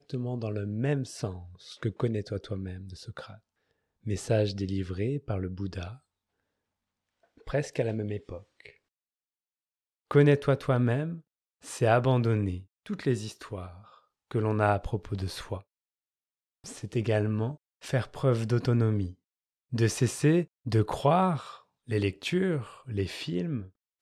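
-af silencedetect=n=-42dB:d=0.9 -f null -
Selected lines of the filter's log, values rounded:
silence_start: 5.95
silence_end: 7.47 | silence_duration: 1.52
silence_start: 8.70
silence_end: 10.11 | silence_duration: 1.41
silence_start: 15.60
silence_end: 16.64 | silence_duration: 1.05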